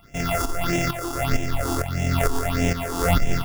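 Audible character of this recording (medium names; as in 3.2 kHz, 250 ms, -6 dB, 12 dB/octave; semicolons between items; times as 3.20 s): a buzz of ramps at a fixed pitch in blocks of 64 samples; tremolo saw up 2.2 Hz, depth 70%; aliases and images of a low sample rate 4.1 kHz, jitter 0%; phasing stages 6, 1.6 Hz, lowest notch 150–1200 Hz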